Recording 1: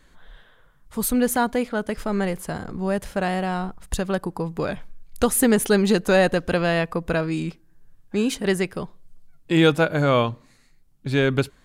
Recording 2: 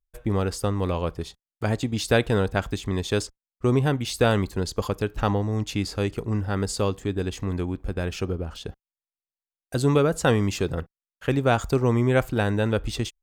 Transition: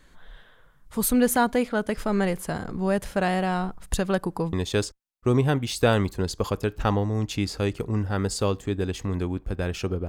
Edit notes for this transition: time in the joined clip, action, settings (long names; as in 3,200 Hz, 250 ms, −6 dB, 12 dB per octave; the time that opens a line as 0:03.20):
recording 1
0:04.53: continue with recording 2 from 0:02.91